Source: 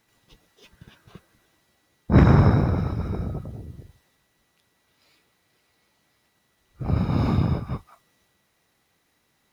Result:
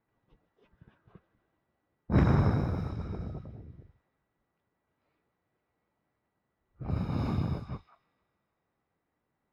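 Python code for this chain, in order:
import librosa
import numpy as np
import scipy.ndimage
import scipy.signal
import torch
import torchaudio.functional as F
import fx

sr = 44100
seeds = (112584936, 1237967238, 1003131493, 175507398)

y = fx.echo_wet_highpass(x, sr, ms=154, feedback_pct=74, hz=3900.0, wet_db=-10.0)
y = fx.env_lowpass(y, sr, base_hz=1300.0, full_db=-19.0)
y = F.gain(torch.from_numpy(y), -9.0).numpy()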